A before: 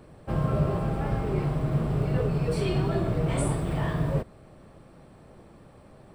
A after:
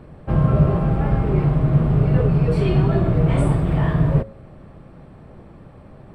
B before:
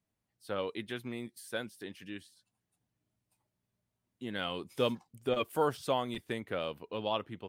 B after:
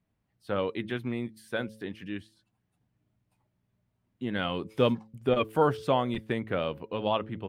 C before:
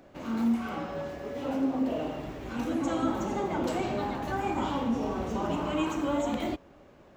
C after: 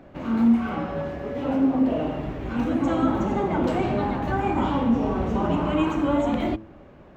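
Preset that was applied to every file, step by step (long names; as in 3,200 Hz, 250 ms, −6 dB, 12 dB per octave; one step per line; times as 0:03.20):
bass and treble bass +5 dB, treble −12 dB
hum removal 109.1 Hz, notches 5
level +5.5 dB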